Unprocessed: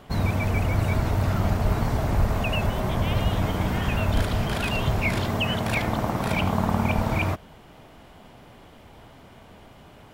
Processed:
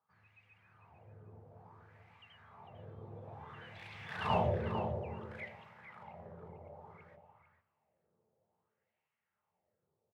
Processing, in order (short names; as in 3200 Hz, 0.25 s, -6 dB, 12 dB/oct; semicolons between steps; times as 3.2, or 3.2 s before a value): Doppler pass-by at 4.34, 31 m/s, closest 2.2 m; dynamic EQ 1400 Hz, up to -6 dB, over -56 dBFS, Q 1.7; on a send at -7 dB: reverb RT60 0.30 s, pre-delay 3 ms; on the sum: wah 0.58 Hz 430–2300 Hz, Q 3.5; outdoor echo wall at 77 m, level -7 dB; gain +7.5 dB